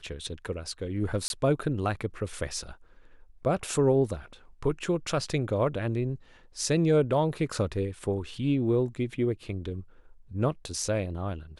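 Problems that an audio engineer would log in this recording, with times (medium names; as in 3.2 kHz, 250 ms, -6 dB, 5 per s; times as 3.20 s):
1.28–1.30 s: dropout 21 ms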